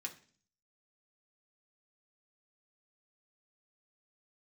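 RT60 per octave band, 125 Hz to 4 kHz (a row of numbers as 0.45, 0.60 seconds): 0.70, 0.65, 0.50, 0.40, 0.45, 0.50 seconds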